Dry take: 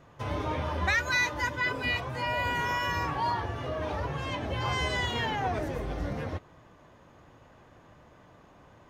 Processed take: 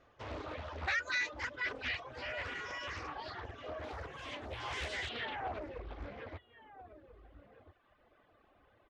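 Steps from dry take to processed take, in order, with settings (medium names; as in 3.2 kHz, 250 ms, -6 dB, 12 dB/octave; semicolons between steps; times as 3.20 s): peaking EQ 150 Hz -14 dB 1.1 oct; band-stop 950 Hz, Q 5.7; echo from a far wall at 230 m, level -13 dB; reverb removal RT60 1.2 s; low-pass 6.1 kHz 24 dB/octave, from 3.84 s 11 kHz, from 5.09 s 4 kHz; loudspeaker Doppler distortion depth 0.8 ms; trim -6.5 dB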